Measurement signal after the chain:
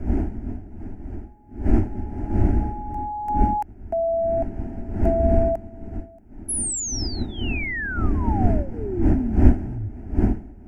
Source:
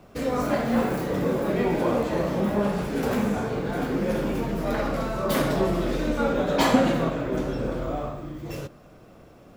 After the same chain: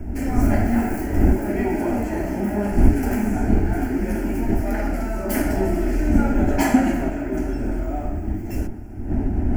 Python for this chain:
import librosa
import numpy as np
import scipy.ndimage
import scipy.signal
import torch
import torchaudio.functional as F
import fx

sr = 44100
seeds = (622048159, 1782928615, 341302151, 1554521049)

y = fx.dmg_wind(x, sr, seeds[0], corner_hz=240.0, level_db=-28.0)
y = fx.bass_treble(y, sr, bass_db=8, treble_db=4)
y = fx.fixed_phaser(y, sr, hz=750.0, stages=8)
y = y * librosa.db_to_amplitude(2.0)